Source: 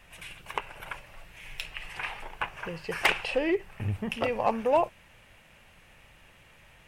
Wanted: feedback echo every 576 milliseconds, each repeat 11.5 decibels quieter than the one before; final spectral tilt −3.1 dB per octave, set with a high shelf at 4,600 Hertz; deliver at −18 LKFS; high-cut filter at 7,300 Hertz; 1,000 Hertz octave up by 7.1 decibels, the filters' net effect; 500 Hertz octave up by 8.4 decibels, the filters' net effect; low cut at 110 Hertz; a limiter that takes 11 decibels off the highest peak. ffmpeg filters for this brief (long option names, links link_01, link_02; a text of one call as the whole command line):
ffmpeg -i in.wav -af "highpass=110,lowpass=7300,equalizer=frequency=500:width_type=o:gain=8.5,equalizer=frequency=1000:width_type=o:gain=5.5,highshelf=frequency=4600:gain=3.5,alimiter=limit=-15.5dB:level=0:latency=1,aecho=1:1:576|1152|1728:0.266|0.0718|0.0194,volume=11.5dB" out.wav